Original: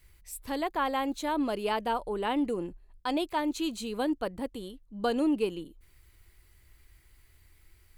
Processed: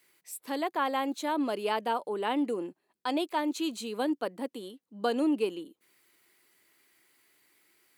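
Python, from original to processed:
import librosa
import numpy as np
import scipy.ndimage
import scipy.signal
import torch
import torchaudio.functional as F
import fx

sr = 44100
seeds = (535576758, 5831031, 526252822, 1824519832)

y = scipy.signal.sosfilt(scipy.signal.butter(4, 220.0, 'highpass', fs=sr, output='sos'), x)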